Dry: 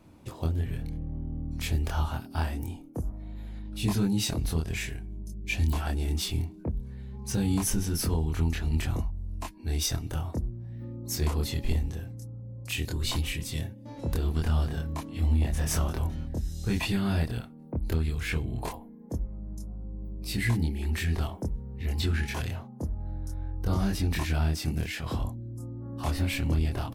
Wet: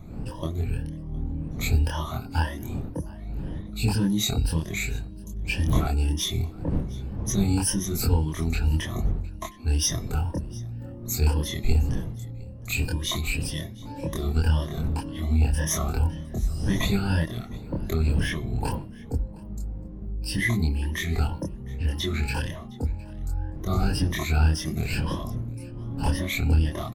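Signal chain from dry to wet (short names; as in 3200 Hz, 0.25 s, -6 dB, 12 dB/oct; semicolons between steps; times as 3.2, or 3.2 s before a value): moving spectral ripple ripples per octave 1.2, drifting +1.9 Hz, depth 18 dB; wind noise 150 Hz -35 dBFS; de-hum 349 Hz, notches 15; on a send: echo 0.711 s -23 dB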